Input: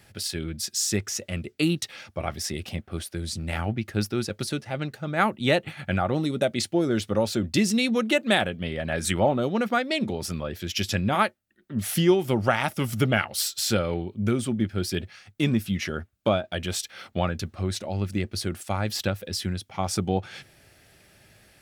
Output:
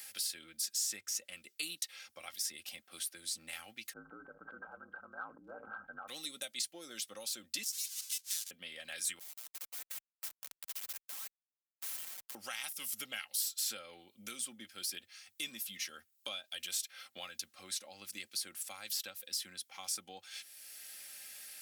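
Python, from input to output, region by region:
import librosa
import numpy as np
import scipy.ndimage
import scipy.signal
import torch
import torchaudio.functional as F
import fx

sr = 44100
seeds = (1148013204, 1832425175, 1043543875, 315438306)

y = fx.chain(x, sr, fx.ring_mod(carrier_hz=56.0),
    fx.brickwall_lowpass(high_hz=1600.0),
    fx.sustainer(db_per_s=26.0), at=(3.93, 6.08))
y = fx.chain(y, sr, fx.halfwave_hold(),
    fx.bandpass_q(hz=5400.0, q=1.2),
    fx.differentiator(), at=(7.63, 8.51))
y = fx.chain(y, sr, fx.highpass(hz=970.0, slope=12),
    fx.schmitt(flips_db=-30.5),
    fx.spectral_comp(ratio=2.0), at=(9.19, 12.35))
y = np.diff(y, prepend=0.0)
y = y + 0.46 * np.pad(y, (int(3.8 * sr / 1000.0), 0))[:len(y)]
y = fx.band_squash(y, sr, depth_pct=70)
y = y * 10.0 ** (-4.0 / 20.0)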